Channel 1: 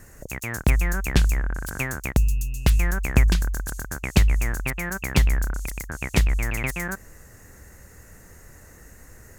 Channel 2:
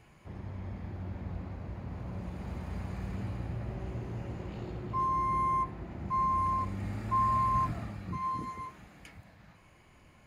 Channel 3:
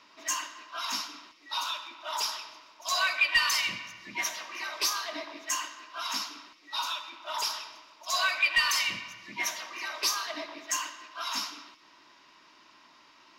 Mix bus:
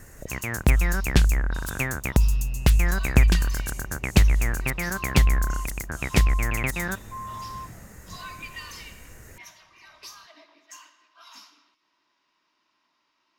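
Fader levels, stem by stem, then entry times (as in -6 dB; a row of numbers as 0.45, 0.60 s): +0.5, -9.0, -15.0 dB; 0.00, 0.00, 0.00 s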